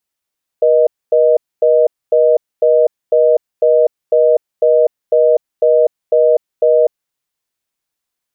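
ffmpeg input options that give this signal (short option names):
-f lavfi -i "aevalsrc='0.316*(sin(2*PI*480*t)+sin(2*PI*620*t))*clip(min(mod(t,0.5),0.25-mod(t,0.5))/0.005,0,1)':d=6.45:s=44100"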